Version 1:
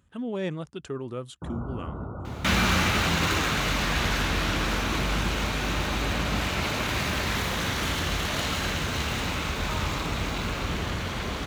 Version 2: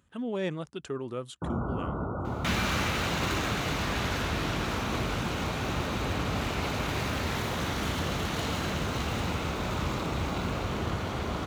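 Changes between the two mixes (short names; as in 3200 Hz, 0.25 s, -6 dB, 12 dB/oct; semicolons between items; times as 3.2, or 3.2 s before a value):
first sound +5.5 dB; second sound -6.0 dB; master: add low shelf 130 Hz -7 dB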